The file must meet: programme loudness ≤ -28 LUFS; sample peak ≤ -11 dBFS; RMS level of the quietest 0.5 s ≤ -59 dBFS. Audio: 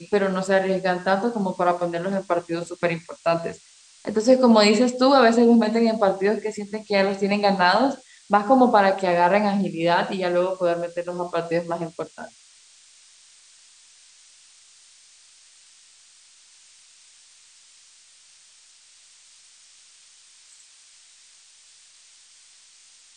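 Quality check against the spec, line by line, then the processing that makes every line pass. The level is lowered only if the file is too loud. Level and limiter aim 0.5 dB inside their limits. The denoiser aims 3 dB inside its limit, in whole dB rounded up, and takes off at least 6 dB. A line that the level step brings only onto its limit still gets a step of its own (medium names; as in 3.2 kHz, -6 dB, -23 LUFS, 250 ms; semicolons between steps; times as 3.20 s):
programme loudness -21.0 LUFS: fail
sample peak -3.5 dBFS: fail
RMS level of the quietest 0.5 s -53 dBFS: fail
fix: trim -7.5 dB; peak limiter -11.5 dBFS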